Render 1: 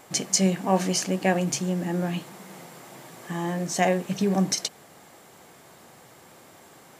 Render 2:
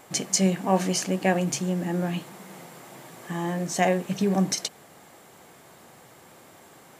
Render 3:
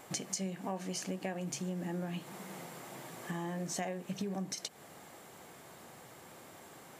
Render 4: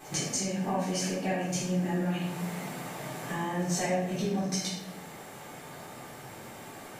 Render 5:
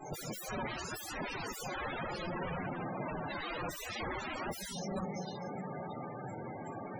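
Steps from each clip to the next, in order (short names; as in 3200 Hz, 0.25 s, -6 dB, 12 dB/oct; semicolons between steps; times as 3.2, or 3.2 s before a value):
bell 5200 Hz -2 dB
compressor 6:1, threshold -33 dBFS, peak gain reduction 16.5 dB; gain -2.5 dB
reverse echo 99 ms -23 dB; reverb RT60 0.90 s, pre-delay 3 ms, DRR -10.5 dB; gain -2 dB
regenerating reverse delay 0.313 s, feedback 62%, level -11 dB; wrapped overs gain 31.5 dB; loudest bins only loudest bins 32; gain +3 dB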